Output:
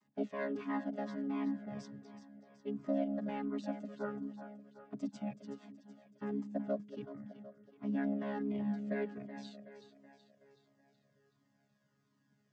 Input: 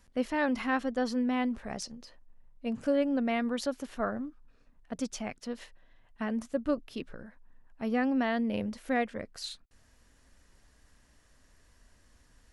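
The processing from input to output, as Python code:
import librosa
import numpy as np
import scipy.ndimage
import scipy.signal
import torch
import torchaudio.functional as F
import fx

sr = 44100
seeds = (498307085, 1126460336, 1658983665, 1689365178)

y = fx.chord_vocoder(x, sr, chord='bare fifth', root=49)
y = fx.echo_split(y, sr, split_hz=360.0, low_ms=207, high_ms=375, feedback_pct=52, wet_db=-11.0)
y = fx.comb_cascade(y, sr, direction='falling', hz=1.4)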